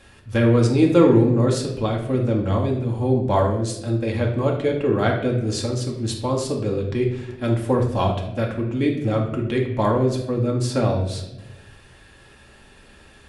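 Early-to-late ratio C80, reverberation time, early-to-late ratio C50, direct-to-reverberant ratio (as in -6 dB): 9.0 dB, not exponential, 5.5 dB, -1.0 dB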